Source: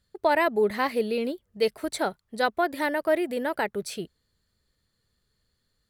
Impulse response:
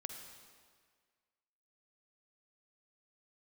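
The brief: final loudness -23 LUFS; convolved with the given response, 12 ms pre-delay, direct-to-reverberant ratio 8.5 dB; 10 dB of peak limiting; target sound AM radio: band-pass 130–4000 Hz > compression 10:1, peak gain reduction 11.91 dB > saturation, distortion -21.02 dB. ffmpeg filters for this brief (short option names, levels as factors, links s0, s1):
-filter_complex "[0:a]alimiter=limit=0.1:level=0:latency=1,asplit=2[s0][s1];[1:a]atrim=start_sample=2205,adelay=12[s2];[s1][s2]afir=irnorm=-1:irlink=0,volume=0.501[s3];[s0][s3]amix=inputs=2:normalize=0,highpass=130,lowpass=4000,acompressor=threshold=0.0224:ratio=10,asoftclip=threshold=0.0422,volume=6.68"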